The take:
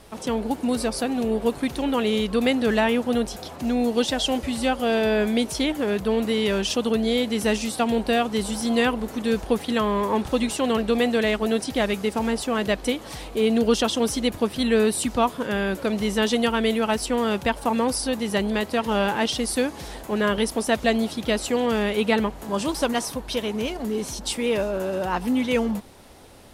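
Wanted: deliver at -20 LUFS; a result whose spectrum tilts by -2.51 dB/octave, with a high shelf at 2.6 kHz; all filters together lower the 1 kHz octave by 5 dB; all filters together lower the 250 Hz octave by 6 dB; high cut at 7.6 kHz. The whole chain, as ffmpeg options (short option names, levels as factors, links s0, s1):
-af "lowpass=7600,equalizer=f=250:t=o:g=-6.5,equalizer=f=1000:t=o:g=-7.5,highshelf=f=2600:g=7.5,volume=1.78"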